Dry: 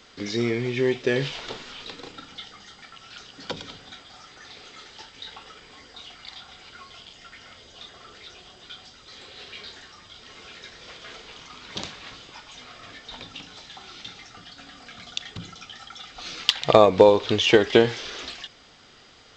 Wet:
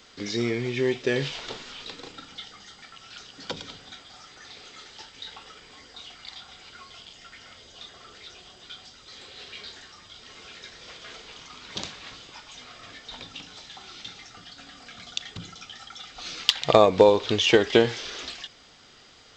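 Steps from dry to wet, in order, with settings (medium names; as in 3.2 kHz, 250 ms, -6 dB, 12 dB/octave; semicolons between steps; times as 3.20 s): treble shelf 5.4 kHz +5.5 dB; trim -2 dB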